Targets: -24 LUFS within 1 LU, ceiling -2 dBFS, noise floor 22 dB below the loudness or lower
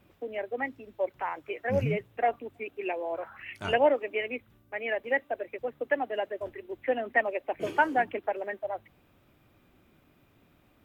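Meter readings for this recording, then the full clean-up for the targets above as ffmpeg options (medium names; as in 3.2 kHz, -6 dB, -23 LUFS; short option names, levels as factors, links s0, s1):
loudness -31.0 LUFS; peak level -10.5 dBFS; loudness target -24.0 LUFS
-> -af "volume=2.24"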